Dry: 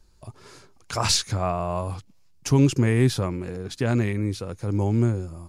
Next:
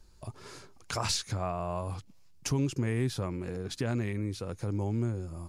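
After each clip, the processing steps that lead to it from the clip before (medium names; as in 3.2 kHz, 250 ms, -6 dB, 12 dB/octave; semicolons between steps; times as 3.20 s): compression 2:1, threshold -35 dBFS, peak gain reduction 12 dB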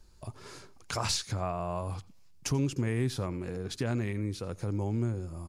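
delay 86 ms -21.5 dB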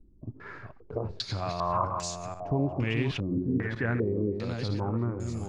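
backward echo that repeats 469 ms, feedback 41%, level -5 dB; step-sequenced low-pass 2.5 Hz 280–7000 Hz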